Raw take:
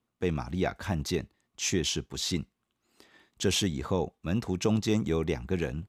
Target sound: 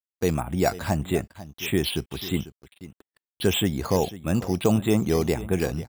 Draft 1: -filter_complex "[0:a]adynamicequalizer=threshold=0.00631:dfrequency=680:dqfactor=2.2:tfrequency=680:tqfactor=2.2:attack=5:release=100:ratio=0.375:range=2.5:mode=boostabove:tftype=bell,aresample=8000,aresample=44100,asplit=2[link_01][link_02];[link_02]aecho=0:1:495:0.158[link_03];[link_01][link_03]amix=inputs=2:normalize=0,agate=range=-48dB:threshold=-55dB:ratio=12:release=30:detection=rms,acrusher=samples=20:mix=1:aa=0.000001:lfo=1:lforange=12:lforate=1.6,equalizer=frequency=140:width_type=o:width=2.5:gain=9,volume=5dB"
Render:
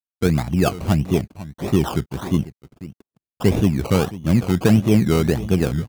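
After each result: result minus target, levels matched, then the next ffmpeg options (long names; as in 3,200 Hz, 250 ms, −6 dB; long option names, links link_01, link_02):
sample-and-hold swept by an LFO: distortion +8 dB; 125 Hz band +2.5 dB
-filter_complex "[0:a]adynamicequalizer=threshold=0.00631:dfrequency=680:dqfactor=2.2:tfrequency=680:tqfactor=2.2:attack=5:release=100:ratio=0.375:range=2.5:mode=boostabove:tftype=bell,aresample=8000,aresample=44100,asplit=2[link_01][link_02];[link_02]aecho=0:1:495:0.158[link_03];[link_01][link_03]amix=inputs=2:normalize=0,agate=range=-48dB:threshold=-55dB:ratio=12:release=30:detection=rms,acrusher=samples=6:mix=1:aa=0.000001:lfo=1:lforange=3.6:lforate=1.6,equalizer=frequency=140:width_type=o:width=2.5:gain=9,volume=5dB"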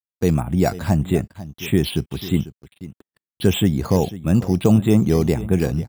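125 Hz band +2.5 dB
-filter_complex "[0:a]adynamicequalizer=threshold=0.00631:dfrequency=680:dqfactor=2.2:tfrequency=680:tqfactor=2.2:attack=5:release=100:ratio=0.375:range=2.5:mode=boostabove:tftype=bell,aresample=8000,aresample=44100,asplit=2[link_01][link_02];[link_02]aecho=0:1:495:0.158[link_03];[link_01][link_03]amix=inputs=2:normalize=0,agate=range=-48dB:threshold=-55dB:ratio=12:release=30:detection=rms,acrusher=samples=6:mix=1:aa=0.000001:lfo=1:lforange=3.6:lforate=1.6,volume=5dB"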